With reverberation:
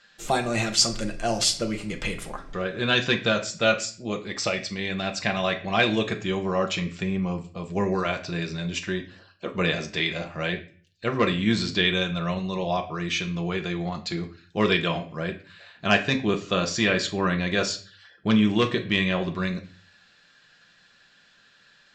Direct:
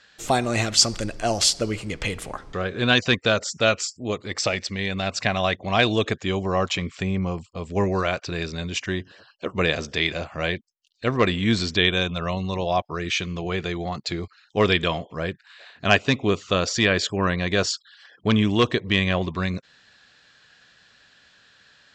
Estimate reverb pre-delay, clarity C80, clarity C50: 5 ms, 17.5 dB, 13.0 dB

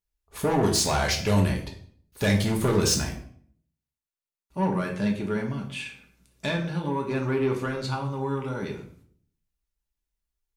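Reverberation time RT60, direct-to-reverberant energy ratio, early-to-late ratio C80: 0.55 s, 0.0 dB, 12.0 dB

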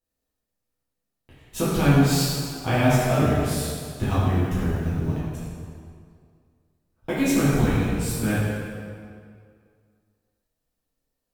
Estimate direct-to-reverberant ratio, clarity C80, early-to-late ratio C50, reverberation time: -11.0 dB, -1.0 dB, -3.0 dB, 2.2 s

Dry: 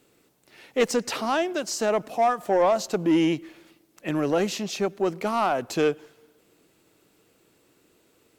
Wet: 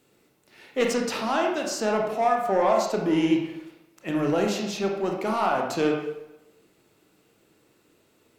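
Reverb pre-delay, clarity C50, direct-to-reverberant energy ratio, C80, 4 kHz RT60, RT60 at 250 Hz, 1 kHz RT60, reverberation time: 24 ms, 3.5 dB, 0.0 dB, 6.5 dB, 0.60 s, 0.90 s, 0.95 s, 0.95 s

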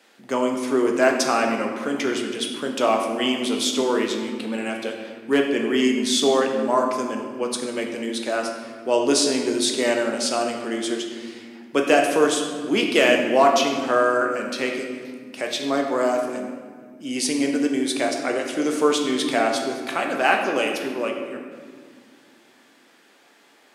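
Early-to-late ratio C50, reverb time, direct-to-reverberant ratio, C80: 4.5 dB, 2.0 s, 1.5 dB, 6.0 dB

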